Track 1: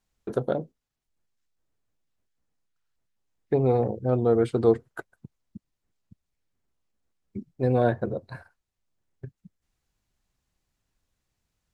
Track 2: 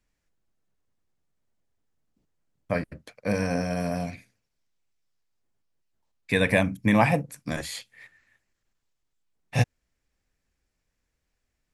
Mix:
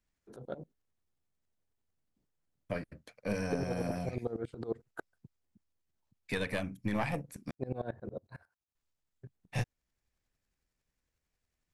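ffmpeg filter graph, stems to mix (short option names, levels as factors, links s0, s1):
-filter_complex "[0:a]highpass=50,alimiter=limit=0.168:level=0:latency=1:release=58,aeval=exprs='val(0)*pow(10,-23*if(lt(mod(-11*n/s,1),2*abs(-11)/1000),1-mod(-11*n/s,1)/(2*abs(-11)/1000),(mod(-11*n/s,1)-2*abs(-11)/1000)/(1-2*abs(-11)/1000))/20)':c=same,volume=0.668[s0];[1:a]aeval=exprs='(tanh(4.47*val(0)+0.65)-tanh(0.65))/4.47':c=same,volume=0.75,asplit=3[s1][s2][s3];[s1]atrim=end=7.51,asetpts=PTS-STARTPTS,afade=t=out:st=7.506:d=0.004:c=hsin[s4];[s2]atrim=start=7.51:end=8.75,asetpts=PTS-STARTPTS,volume=0[s5];[s3]atrim=start=8.75,asetpts=PTS-STARTPTS,afade=t=in:d=0.004:c=hsin[s6];[s4][s5][s6]concat=n=3:v=0:a=1[s7];[s0][s7]amix=inputs=2:normalize=0,tremolo=f=80:d=0.261,alimiter=limit=0.0891:level=0:latency=1:release=425"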